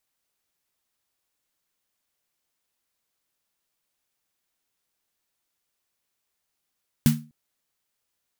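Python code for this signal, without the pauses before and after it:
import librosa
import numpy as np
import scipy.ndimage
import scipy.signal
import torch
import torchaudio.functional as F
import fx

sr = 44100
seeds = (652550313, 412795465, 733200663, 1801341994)

y = fx.drum_snare(sr, seeds[0], length_s=0.25, hz=150.0, second_hz=230.0, noise_db=-9.5, noise_from_hz=970.0, decay_s=0.33, noise_decay_s=0.23)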